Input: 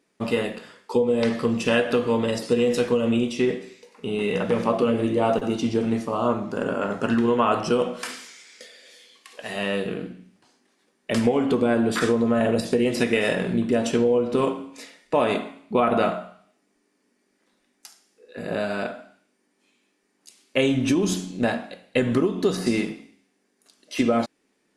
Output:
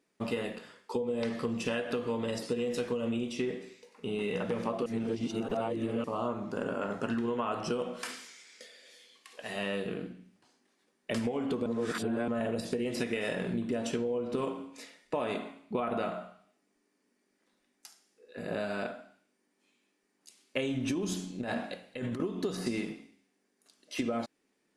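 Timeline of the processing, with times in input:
0:04.86–0:06.04: reverse
0:11.66–0:12.28: reverse
0:21.41–0:22.20: compressor whose output falls as the input rises −28 dBFS
whole clip: downward compressor, threshold −22 dBFS; level −6.5 dB

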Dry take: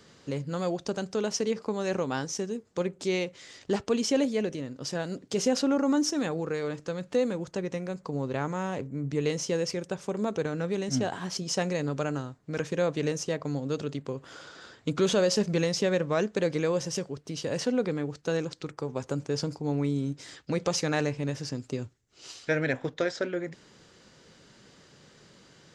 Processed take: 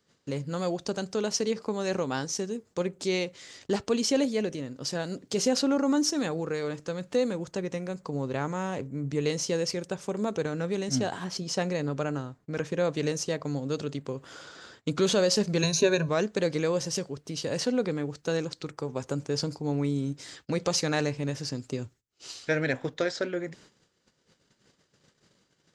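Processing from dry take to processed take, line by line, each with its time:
0:11.24–0:12.85: high-shelf EQ 4,600 Hz −7.5 dB
0:15.62–0:16.09: EQ curve with evenly spaced ripples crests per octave 1.5, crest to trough 16 dB
whole clip: dynamic equaliser 4,300 Hz, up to +5 dB, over −53 dBFS, Q 4.8; noise gate −53 dBFS, range −18 dB; high-shelf EQ 7,700 Hz +5.5 dB

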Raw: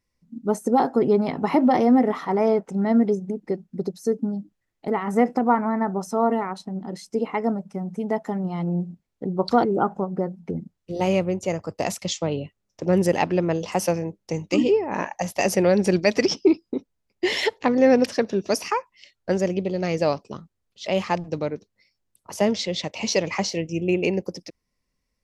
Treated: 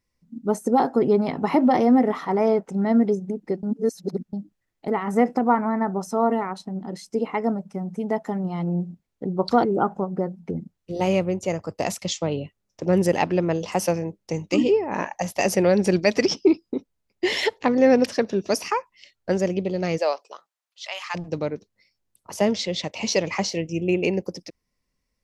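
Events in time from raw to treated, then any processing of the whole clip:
0:03.63–0:04.33: reverse
0:19.97–0:21.14: high-pass filter 420 Hz → 1,100 Hz 24 dB per octave

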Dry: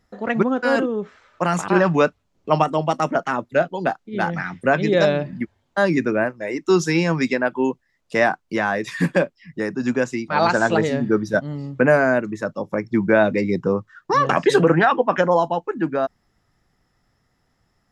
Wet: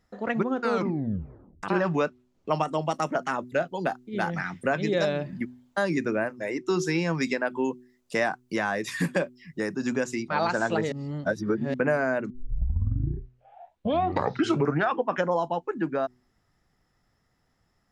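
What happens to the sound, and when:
0:00.59: tape stop 1.04 s
0:02.50–0:06.50: high-shelf EQ 7,600 Hz +11 dB
0:07.14–0:10.23: high-shelf EQ 6,800 Hz +11.5 dB
0:10.92–0:11.74: reverse
0:12.30: tape start 2.70 s
whole clip: hum removal 124.4 Hz, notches 3; downward compressor 2 to 1, threshold −20 dBFS; level −4 dB

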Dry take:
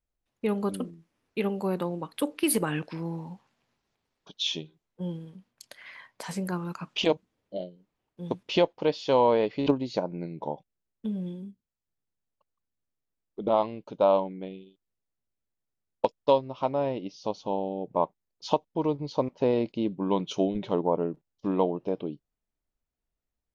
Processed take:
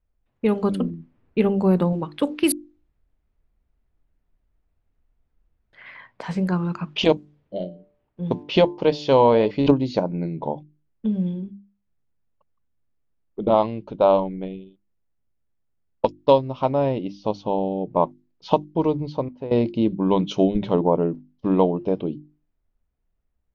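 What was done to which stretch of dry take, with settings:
0:00.81–0:01.93: spectral tilt −1.5 dB per octave
0:02.52–0:05.73: fill with room tone
0:07.13–0:09.51: hum removal 146.8 Hz, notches 7
0:13.86–0:16.19: amplitude modulation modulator 200 Hz, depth 15%
0:18.84–0:19.51: fade out, to −17.5 dB
whole clip: mains-hum notches 50/100/150/200/250/300/350 Hz; low-pass that shuts in the quiet parts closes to 2,300 Hz, open at −20 dBFS; low-shelf EQ 190 Hz +10 dB; level +5 dB

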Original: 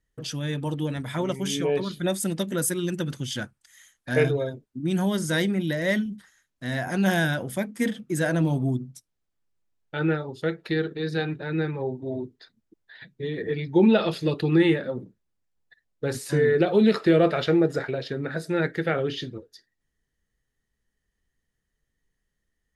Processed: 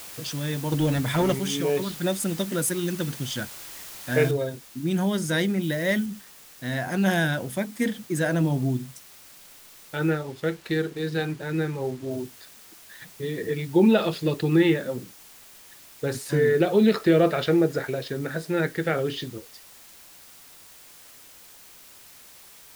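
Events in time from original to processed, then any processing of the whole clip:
0:00.72–0:01.40: leveller curve on the samples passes 2
0:04.31: noise floor change −41 dB −49 dB
0:05.62–0:06.06: high-shelf EQ 10,000 Hz +7 dB
0:10.10–0:12.11: slack as between gear wheels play −43.5 dBFS

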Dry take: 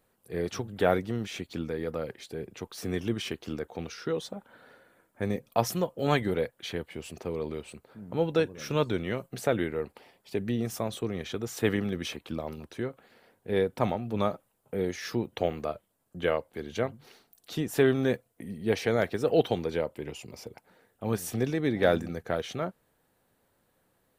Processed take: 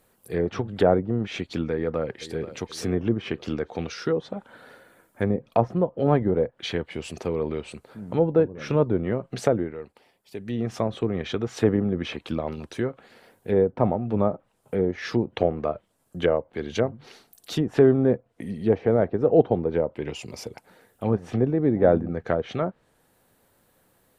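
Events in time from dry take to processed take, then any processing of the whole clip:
0:01.73–0:02.45: delay throw 480 ms, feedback 45%, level −14.5 dB
0:09.47–0:10.74: duck −11.5 dB, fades 0.30 s
whole clip: treble cut that deepens with the level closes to 820 Hz, closed at −25.5 dBFS; high-shelf EQ 7,200 Hz +4.5 dB; level +6.5 dB

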